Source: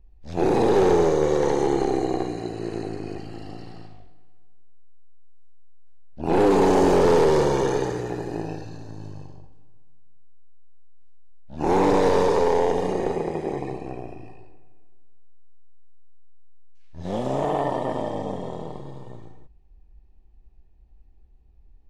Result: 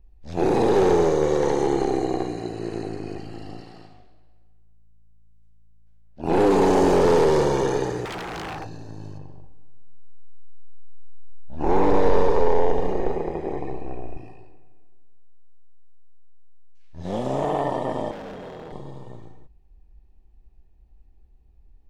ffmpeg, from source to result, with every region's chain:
-filter_complex "[0:a]asettb=1/sr,asplit=3[a][b][c];[a]atrim=end=3.604[d];[b]atrim=start=3.6:end=6.24,asetpts=PTS-STARTPTS,afade=t=in:d=0.004:c=qsin,afade=t=out:st=2.636:d=0.004:c=qsin,lowshelf=f=170:g=-9,asplit=5[e][f][g][h][i];[f]adelay=142,afreqshift=-55,volume=-16.5dB[j];[g]adelay=284,afreqshift=-110,volume=-22.7dB[k];[h]adelay=426,afreqshift=-165,volume=-28.9dB[l];[i]adelay=568,afreqshift=-220,volume=-35.1dB[m];[e][j][k][l][m]amix=inputs=5:normalize=0,atrim=end_sample=116424[n];[c]atrim=start=6.236[o];[d][n]acrossfade=d=0.004:c1=hsin:c2=qsin[p];[p][o]acrossfade=d=0.004:c1=qsin:c2=hsin,asettb=1/sr,asplit=3[q][r][s];[q]atrim=end=8.054[t];[r]atrim=start=8.05:end=8.67,asetpts=PTS-STARTPTS,afade=t=in:d=0.004:c=qsin,afade=t=out:st=0.616:d=0.004:c=qsin,equalizer=f=810:t=o:w=1.1:g=13,aeval=exprs='0.0422*(abs(mod(val(0)/0.0422+3,4)-2)-1)':c=same[u];[s]atrim=start=8.666[v];[t][u]acrossfade=d=0.004:c1=hsin:c2=qsin[w];[w][v]acrossfade=d=0.004:c1=qsin:c2=hsin,asettb=1/sr,asplit=3[x][y][z];[x]atrim=end=9.184[aa];[y]atrim=start=9.18:end=14.17,asetpts=PTS-STARTPTS,afade=t=in:d=0.004:c=qsin,afade=t=out:st=4.986:d=0.004:c=qsin,lowpass=f=2.1k:p=1,asubboost=boost=6:cutoff=55[ab];[z]atrim=start=14.166[ac];[aa][ab]acrossfade=d=0.004:c1=hsin:c2=qsin[ad];[ad][ac]acrossfade=d=0.004:c1=qsin:c2=hsin,asettb=1/sr,asplit=3[ae][af][ag];[ae]atrim=end=18.114[ah];[af]atrim=start=18.11:end=18.72,asetpts=PTS-STARTPTS,afade=t=in:d=0.004:c=qsin,afade=t=out:st=0.606:d=0.004:c=qsin,highpass=190,lowpass=5.3k,asoftclip=type=hard:threshold=-33.5dB[ai];[ag]atrim=start=18.716[aj];[ah][ai]acrossfade=d=0.004:c1=hsin:c2=qsin[ak];[ak][aj]acrossfade=d=0.004:c1=qsin:c2=hsin"

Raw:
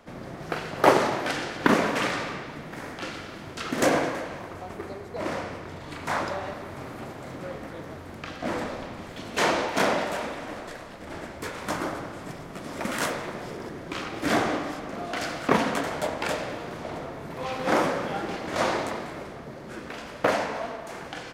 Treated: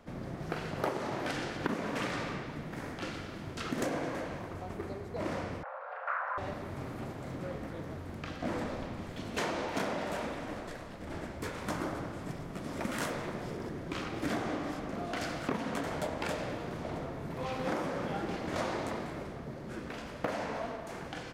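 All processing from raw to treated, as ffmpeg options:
-filter_complex "[0:a]asettb=1/sr,asplit=3[a][b][c];[a]atrim=end=5.634[d];[b]atrim=start=5.63:end=6.38,asetpts=PTS-STARTPTS,afade=t=in:d=0.004:c=qsin,afade=t=out:st=0.746:d=0.004:c=qsin,lowpass=f=970:t=q:w=1.9,afreqshift=440[e];[c]atrim=start=6.376[f];[d][e]acrossfade=d=0.004:c1=hsin:c2=qsin[g];[g][f]acrossfade=d=0.004:c1=qsin:c2=hsin,lowshelf=f=290:g=8,acompressor=threshold=-24dB:ratio=8,volume=-6dB"

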